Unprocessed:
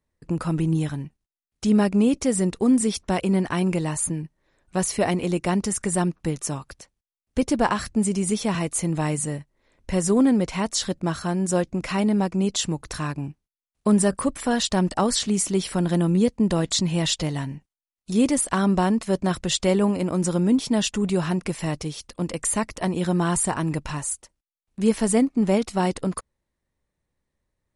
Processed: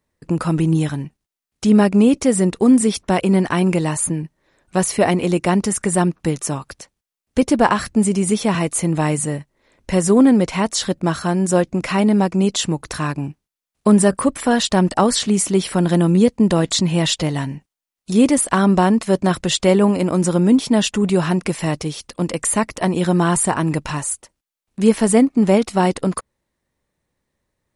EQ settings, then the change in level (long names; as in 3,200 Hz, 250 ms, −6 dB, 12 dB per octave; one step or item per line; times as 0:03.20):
dynamic equaliser 6,000 Hz, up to −4 dB, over −40 dBFS, Q 0.78
low-shelf EQ 71 Hz −10 dB
+7.0 dB